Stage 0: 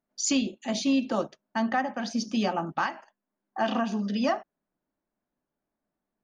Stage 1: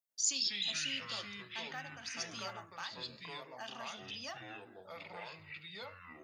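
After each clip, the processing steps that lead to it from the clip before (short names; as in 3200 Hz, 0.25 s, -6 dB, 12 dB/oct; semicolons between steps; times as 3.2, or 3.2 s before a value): pre-emphasis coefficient 0.97; echoes that change speed 92 ms, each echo -5 st, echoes 3; gain -2 dB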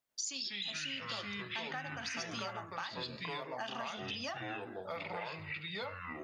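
high shelf 4600 Hz -10.5 dB; compressor 10:1, threshold -47 dBFS, peak gain reduction 13 dB; gain +10.5 dB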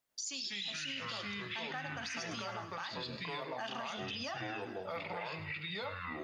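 limiter -33.5 dBFS, peak gain reduction 7 dB; thin delay 0.105 s, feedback 71%, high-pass 1900 Hz, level -14.5 dB; gain +2.5 dB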